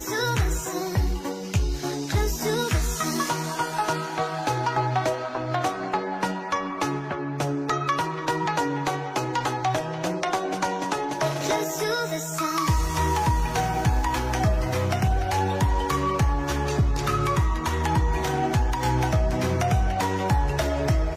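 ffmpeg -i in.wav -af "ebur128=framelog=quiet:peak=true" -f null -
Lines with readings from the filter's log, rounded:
Integrated loudness:
  I:         -25.4 LUFS
  Threshold: -35.4 LUFS
Loudness range:
  LRA:         2.7 LU
  Threshold: -45.4 LUFS
  LRA low:   -26.8 LUFS
  LRA high:  -24.1 LUFS
True peak:
  Peak:      -12.8 dBFS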